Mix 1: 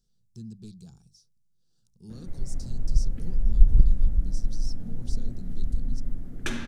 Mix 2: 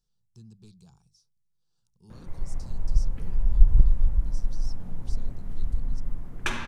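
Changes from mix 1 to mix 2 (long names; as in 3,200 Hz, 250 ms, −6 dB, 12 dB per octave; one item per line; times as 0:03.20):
speech −5.5 dB
master: add graphic EQ with 15 bands 250 Hz −7 dB, 1,000 Hz +12 dB, 2,500 Hz +5 dB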